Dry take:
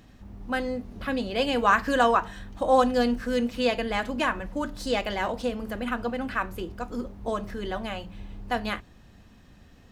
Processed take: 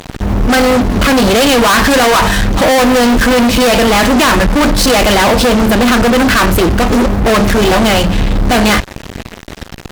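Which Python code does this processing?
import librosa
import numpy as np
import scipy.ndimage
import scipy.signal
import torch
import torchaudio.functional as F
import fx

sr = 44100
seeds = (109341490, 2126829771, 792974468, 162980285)

y = fx.fuzz(x, sr, gain_db=45.0, gate_db=-49.0)
y = y * 10.0 ** (5.5 / 20.0)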